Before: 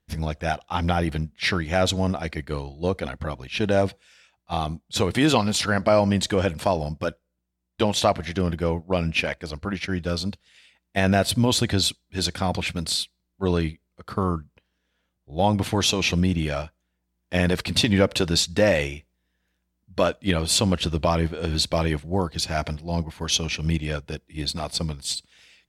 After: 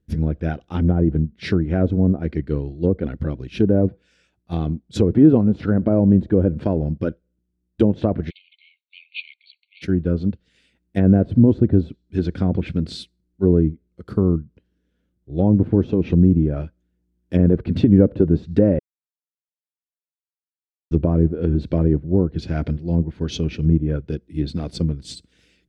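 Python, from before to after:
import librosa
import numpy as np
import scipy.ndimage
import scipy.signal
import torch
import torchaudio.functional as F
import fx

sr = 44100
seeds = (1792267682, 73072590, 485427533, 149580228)

y = fx.brickwall_bandpass(x, sr, low_hz=2100.0, high_hz=4500.0, at=(8.29, 9.81), fade=0.02)
y = fx.edit(y, sr, fx.silence(start_s=18.79, length_s=2.12), tone=tone)
y = fx.low_shelf_res(y, sr, hz=550.0, db=14.0, q=1.5)
y = fx.env_lowpass_down(y, sr, base_hz=920.0, full_db=-6.0)
y = fx.peak_eq(y, sr, hz=1500.0, db=5.5, octaves=0.27)
y = y * librosa.db_to_amplitude(-7.5)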